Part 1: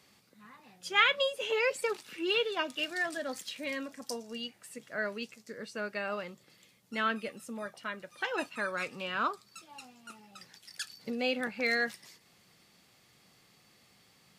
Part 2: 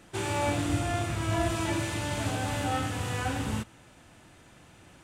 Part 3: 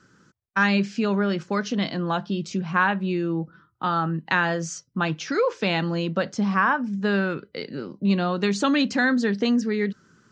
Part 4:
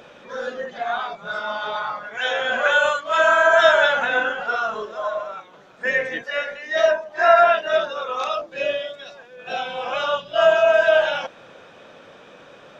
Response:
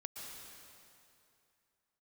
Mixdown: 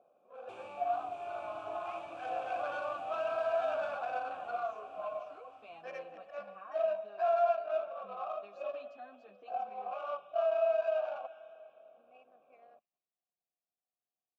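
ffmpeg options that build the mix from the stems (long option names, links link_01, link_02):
-filter_complex "[0:a]equalizer=frequency=2700:width_type=o:width=0.67:gain=14.5,adelay=900,volume=-16.5dB[link_01];[1:a]adelay=350,volume=1dB,asplit=2[link_02][link_03];[link_03]volume=-10dB[link_04];[2:a]asplit=2[link_05][link_06];[link_06]adelay=9.3,afreqshift=0.68[link_07];[link_05][link_07]amix=inputs=2:normalize=1,volume=-14dB[link_08];[3:a]volume=-6dB,asplit=2[link_09][link_10];[link_10]volume=-13dB[link_11];[link_02][link_08]amix=inputs=2:normalize=0,acompressor=threshold=-35dB:ratio=2.5,volume=0dB[link_12];[link_01][link_09]amix=inputs=2:normalize=0,adynamicsmooth=sensitivity=2:basefreq=550,alimiter=limit=-18.5dB:level=0:latency=1:release=106,volume=0dB[link_13];[4:a]atrim=start_sample=2205[link_14];[link_11][link_14]afir=irnorm=-1:irlink=0[link_15];[link_04]aecho=0:1:613|1226|1839|2452|3065|3678|4291|4904|5517:1|0.58|0.336|0.195|0.113|0.0656|0.0381|0.0221|0.0128[link_16];[link_12][link_13][link_15][link_16]amix=inputs=4:normalize=0,asplit=3[link_17][link_18][link_19];[link_17]bandpass=frequency=730:width_type=q:width=8,volume=0dB[link_20];[link_18]bandpass=frequency=1090:width_type=q:width=8,volume=-6dB[link_21];[link_19]bandpass=frequency=2440:width_type=q:width=8,volume=-9dB[link_22];[link_20][link_21][link_22]amix=inputs=3:normalize=0"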